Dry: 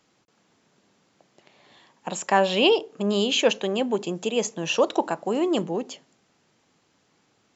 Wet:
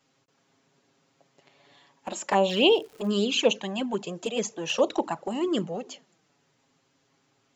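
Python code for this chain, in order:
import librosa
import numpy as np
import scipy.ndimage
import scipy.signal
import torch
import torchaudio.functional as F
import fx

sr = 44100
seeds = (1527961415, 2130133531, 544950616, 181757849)

y = fx.env_flanger(x, sr, rest_ms=7.5, full_db=-16.5)
y = fx.dmg_crackle(y, sr, seeds[0], per_s=270.0, level_db=-42.0, at=(2.48, 3.1), fade=0.02)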